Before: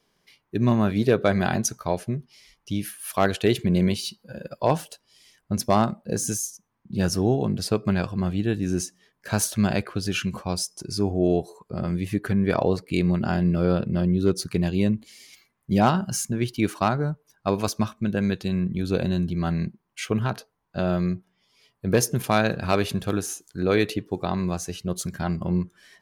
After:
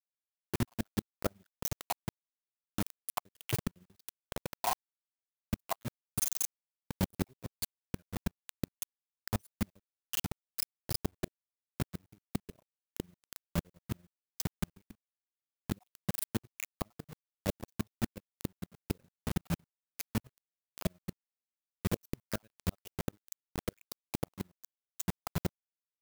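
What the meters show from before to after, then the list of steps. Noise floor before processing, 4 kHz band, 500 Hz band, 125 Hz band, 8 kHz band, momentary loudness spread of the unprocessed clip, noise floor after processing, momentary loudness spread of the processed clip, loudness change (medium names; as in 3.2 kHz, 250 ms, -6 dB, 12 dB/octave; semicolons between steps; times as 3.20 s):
-73 dBFS, -12.0 dB, -19.5 dB, -15.0 dB, -11.0 dB, 9 LU, under -85 dBFS, 11 LU, -14.5 dB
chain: random holes in the spectrogram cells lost 64%; bass shelf 230 Hz +8 dB; AM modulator 22 Hz, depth 55%; bit crusher 5-bit; inverted gate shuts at -15 dBFS, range -38 dB; treble shelf 10 kHz +10.5 dB; trim -4 dB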